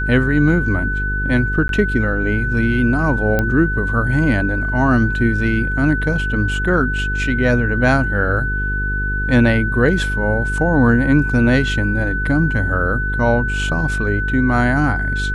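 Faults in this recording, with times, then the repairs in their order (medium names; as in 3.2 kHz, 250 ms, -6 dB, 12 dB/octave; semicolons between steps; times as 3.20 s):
buzz 50 Hz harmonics 9 -22 dBFS
whine 1.5 kHz -21 dBFS
1.68–1.69 s: dropout 12 ms
3.39 s: pop -6 dBFS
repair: de-click; de-hum 50 Hz, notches 9; band-stop 1.5 kHz, Q 30; interpolate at 1.68 s, 12 ms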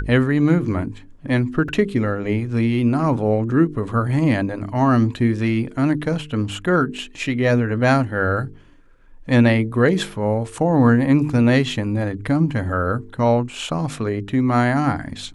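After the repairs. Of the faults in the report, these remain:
nothing left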